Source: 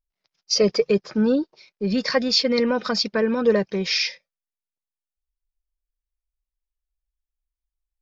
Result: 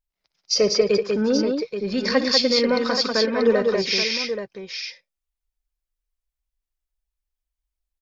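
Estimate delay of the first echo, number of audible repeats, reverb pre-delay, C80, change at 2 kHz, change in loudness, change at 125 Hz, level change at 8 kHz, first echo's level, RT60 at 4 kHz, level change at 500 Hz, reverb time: 60 ms, 4, no reverb, no reverb, +2.0 dB, +1.0 dB, no reading, no reading, -14.5 dB, no reverb, +2.0 dB, no reverb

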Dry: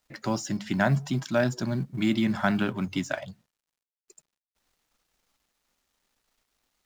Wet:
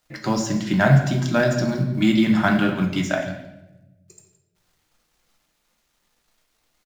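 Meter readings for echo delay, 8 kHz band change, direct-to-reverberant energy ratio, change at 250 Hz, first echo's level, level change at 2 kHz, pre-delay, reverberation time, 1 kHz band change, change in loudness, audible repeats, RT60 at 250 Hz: 168 ms, +6.0 dB, 1.5 dB, +7.5 dB, -15.5 dB, +7.0 dB, 6 ms, 0.95 s, +6.5 dB, +7.5 dB, 1, 1.3 s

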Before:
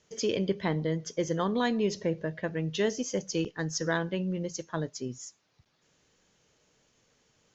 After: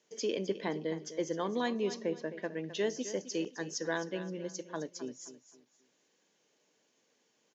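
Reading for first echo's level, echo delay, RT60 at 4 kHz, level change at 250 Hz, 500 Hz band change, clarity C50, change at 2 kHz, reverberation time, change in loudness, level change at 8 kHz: -13.0 dB, 261 ms, no reverb, -6.0 dB, -4.0 dB, no reverb, -5.0 dB, no reverb, -5.0 dB, no reading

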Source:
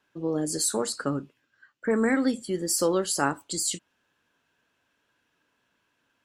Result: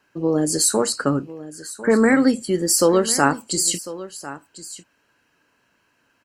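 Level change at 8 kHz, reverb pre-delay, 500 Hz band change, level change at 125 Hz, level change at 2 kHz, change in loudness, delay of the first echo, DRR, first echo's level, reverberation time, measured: +8.0 dB, no reverb, +8.0 dB, +8.0 dB, +8.0 dB, +8.0 dB, 1049 ms, no reverb, -16.0 dB, no reverb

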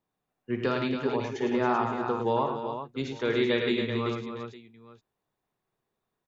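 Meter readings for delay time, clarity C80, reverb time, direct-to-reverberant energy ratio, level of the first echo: 54 ms, no reverb, no reverb, no reverb, -10.0 dB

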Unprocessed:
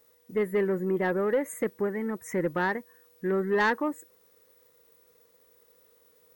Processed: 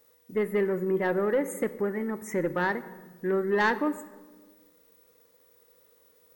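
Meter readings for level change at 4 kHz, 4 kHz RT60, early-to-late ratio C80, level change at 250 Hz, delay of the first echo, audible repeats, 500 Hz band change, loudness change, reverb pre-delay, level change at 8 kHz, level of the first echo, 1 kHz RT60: +0.5 dB, 0.85 s, 16.5 dB, +0.5 dB, no echo, no echo, +0.5 dB, 0.0 dB, 3 ms, 0.0 dB, no echo, 1.2 s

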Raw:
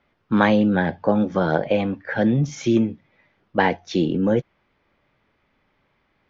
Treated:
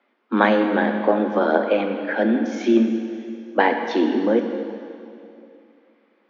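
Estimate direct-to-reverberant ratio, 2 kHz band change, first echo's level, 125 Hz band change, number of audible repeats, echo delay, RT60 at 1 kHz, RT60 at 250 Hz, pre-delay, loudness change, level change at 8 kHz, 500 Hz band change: 5.0 dB, +2.0 dB, no echo, under -10 dB, no echo, no echo, 2.6 s, 2.7 s, 5 ms, +0.5 dB, no reading, +2.5 dB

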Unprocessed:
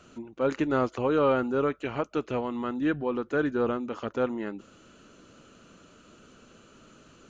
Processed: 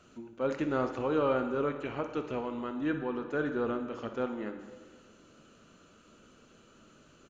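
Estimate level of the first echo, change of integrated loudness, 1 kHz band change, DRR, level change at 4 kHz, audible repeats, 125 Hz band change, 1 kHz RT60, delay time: -13.0 dB, -4.5 dB, -4.5 dB, 6.5 dB, -4.5 dB, 1, -5.0 dB, 1.6 s, 61 ms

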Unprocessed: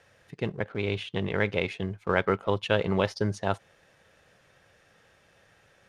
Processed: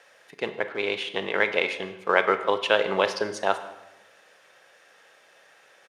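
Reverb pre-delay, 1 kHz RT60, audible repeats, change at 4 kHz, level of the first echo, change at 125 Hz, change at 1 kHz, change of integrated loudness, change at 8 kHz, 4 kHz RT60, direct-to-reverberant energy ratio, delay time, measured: 26 ms, 0.95 s, 1, +6.5 dB, -23.0 dB, -15.0 dB, +6.0 dB, +3.5 dB, +6.5 dB, 0.75 s, 10.0 dB, 150 ms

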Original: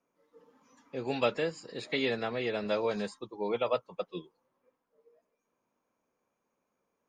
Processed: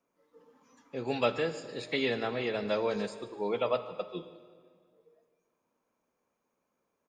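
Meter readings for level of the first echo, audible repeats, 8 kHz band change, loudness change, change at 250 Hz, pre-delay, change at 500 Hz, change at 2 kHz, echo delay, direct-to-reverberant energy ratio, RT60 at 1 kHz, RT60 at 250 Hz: -19.0 dB, 1, no reading, +0.5 dB, +0.5 dB, 3 ms, +0.5 dB, +0.5 dB, 149 ms, 10.5 dB, 1.8 s, 2.1 s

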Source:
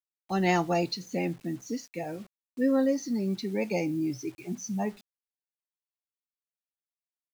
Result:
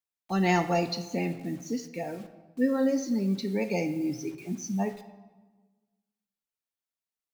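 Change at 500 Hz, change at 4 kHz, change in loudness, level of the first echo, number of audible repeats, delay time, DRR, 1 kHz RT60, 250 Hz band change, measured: 0.0 dB, 0.0 dB, +0.5 dB, no echo, no echo, no echo, 8.0 dB, 1.3 s, +1.0 dB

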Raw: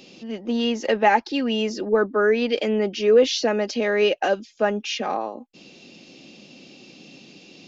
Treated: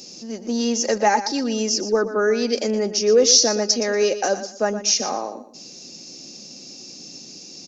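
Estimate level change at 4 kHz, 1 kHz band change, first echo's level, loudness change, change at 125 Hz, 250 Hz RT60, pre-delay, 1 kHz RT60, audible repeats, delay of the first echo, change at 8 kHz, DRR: +6.5 dB, 0.0 dB, -12.0 dB, +2.5 dB, no reading, no reverb, no reverb, no reverb, 2, 119 ms, no reading, no reverb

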